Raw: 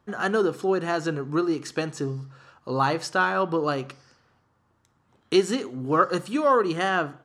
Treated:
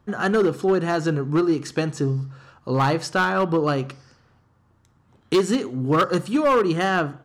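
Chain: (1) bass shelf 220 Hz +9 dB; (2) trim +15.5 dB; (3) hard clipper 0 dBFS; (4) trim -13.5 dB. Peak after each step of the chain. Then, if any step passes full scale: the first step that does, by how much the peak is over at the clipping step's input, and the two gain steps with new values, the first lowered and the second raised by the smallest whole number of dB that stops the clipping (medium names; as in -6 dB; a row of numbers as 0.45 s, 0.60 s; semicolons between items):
-6.0 dBFS, +9.5 dBFS, 0.0 dBFS, -13.5 dBFS; step 2, 9.5 dB; step 2 +5.5 dB, step 4 -3.5 dB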